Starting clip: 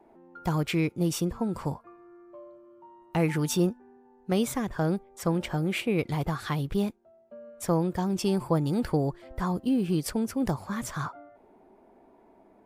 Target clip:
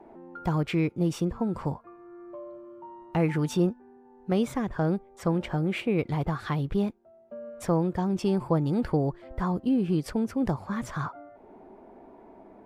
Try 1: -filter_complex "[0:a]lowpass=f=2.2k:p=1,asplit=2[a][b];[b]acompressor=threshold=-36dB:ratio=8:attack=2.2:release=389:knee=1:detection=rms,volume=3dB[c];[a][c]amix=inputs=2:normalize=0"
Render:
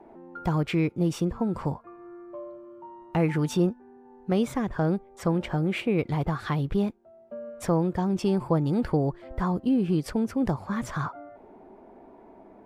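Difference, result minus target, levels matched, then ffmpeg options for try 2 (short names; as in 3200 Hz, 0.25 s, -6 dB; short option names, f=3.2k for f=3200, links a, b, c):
compressor: peak gain reduction -7.5 dB
-filter_complex "[0:a]lowpass=f=2.2k:p=1,asplit=2[a][b];[b]acompressor=threshold=-44.5dB:ratio=8:attack=2.2:release=389:knee=1:detection=rms,volume=3dB[c];[a][c]amix=inputs=2:normalize=0"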